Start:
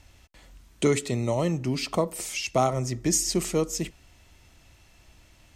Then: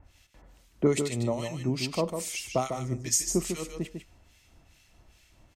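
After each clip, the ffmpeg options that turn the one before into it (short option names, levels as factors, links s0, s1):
-filter_complex "[0:a]acrossover=split=1500[s0][s1];[s0]aeval=exprs='val(0)*(1-1/2+1/2*cos(2*PI*2.4*n/s))':c=same[s2];[s1]aeval=exprs='val(0)*(1-1/2-1/2*cos(2*PI*2.4*n/s))':c=same[s3];[s2][s3]amix=inputs=2:normalize=0,aecho=1:1:149:0.447"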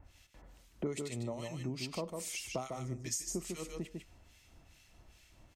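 -af "acompressor=threshold=0.0141:ratio=2.5,volume=0.794"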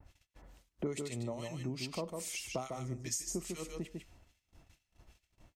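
-af "agate=range=0.0891:threshold=0.00112:ratio=16:detection=peak"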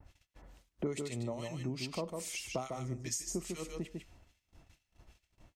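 -af "highshelf=f=8800:g=-4,volume=1.12"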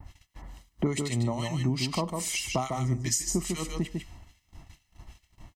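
-af "aecho=1:1:1:0.53,volume=2.82"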